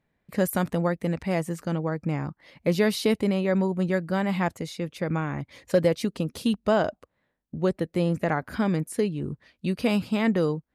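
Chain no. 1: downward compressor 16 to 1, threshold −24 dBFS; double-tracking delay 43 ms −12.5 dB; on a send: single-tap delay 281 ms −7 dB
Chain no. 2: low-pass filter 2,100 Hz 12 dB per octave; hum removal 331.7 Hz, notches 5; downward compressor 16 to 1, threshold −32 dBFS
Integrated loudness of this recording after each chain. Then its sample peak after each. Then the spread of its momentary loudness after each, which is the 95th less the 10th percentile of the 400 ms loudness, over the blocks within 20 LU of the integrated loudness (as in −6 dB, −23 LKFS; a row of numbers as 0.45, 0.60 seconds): −30.0, −38.5 LKFS; −13.5, −20.5 dBFS; 5, 4 LU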